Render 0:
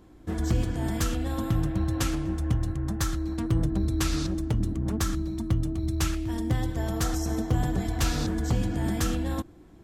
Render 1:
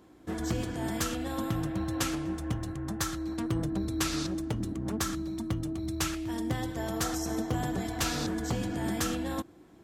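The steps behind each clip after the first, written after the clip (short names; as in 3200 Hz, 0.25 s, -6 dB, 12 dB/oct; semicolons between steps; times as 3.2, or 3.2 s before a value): HPF 240 Hz 6 dB/oct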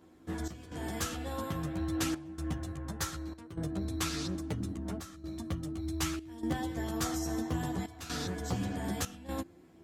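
chorus voices 2, 0.23 Hz, delay 12 ms, depth 1.2 ms; step gate "xx.xxxxxx.xx" 63 bpm -12 dB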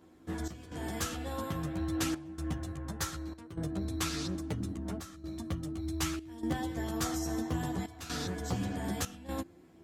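nothing audible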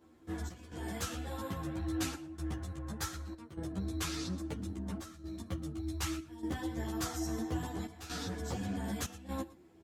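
echo 0.117 s -18.5 dB; ensemble effect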